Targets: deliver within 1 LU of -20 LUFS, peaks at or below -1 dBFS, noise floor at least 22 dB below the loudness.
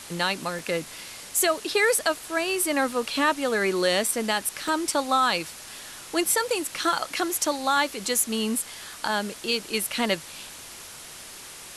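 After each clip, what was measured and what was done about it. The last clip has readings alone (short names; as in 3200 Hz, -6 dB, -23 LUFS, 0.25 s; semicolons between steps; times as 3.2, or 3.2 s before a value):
dropouts 5; longest dropout 1.4 ms; noise floor -43 dBFS; noise floor target -47 dBFS; loudness -25.0 LUFS; peak -11.5 dBFS; loudness target -20.0 LUFS
-> interpolate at 0.59/4.06/4.68/6.84/7.77, 1.4 ms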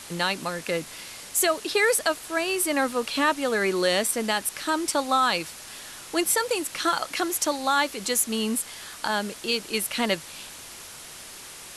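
dropouts 0; noise floor -43 dBFS; noise floor target -47 dBFS
-> noise print and reduce 6 dB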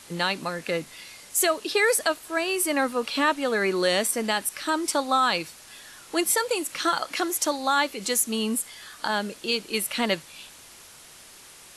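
noise floor -48 dBFS; loudness -25.0 LUFS; peak -11.5 dBFS; loudness target -20.0 LUFS
-> gain +5 dB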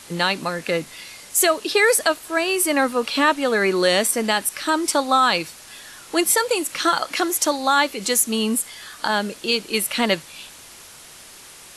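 loudness -20.0 LUFS; peak -6.5 dBFS; noise floor -43 dBFS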